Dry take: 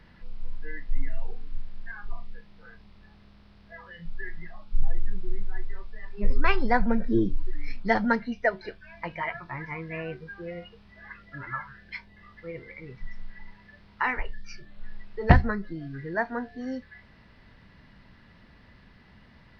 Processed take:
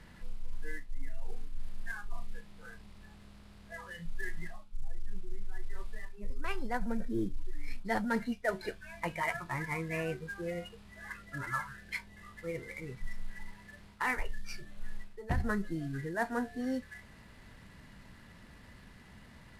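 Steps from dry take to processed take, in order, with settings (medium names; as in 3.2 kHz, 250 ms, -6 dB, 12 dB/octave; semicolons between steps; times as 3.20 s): CVSD coder 64 kbps; reverse; compression 12:1, threshold -28 dBFS, peak gain reduction 19 dB; reverse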